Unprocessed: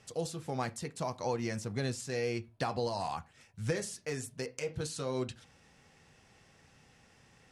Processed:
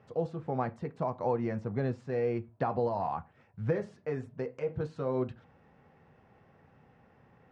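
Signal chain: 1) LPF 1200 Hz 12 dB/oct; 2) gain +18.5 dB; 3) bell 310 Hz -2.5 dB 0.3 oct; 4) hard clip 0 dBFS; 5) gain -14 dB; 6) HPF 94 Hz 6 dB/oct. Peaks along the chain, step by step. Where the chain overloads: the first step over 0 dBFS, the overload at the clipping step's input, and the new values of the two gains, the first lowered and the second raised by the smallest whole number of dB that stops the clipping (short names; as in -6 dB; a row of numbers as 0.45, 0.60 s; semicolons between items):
-19.5, -1.0, -1.5, -1.5, -15.5, -17.0 dBFS; no overload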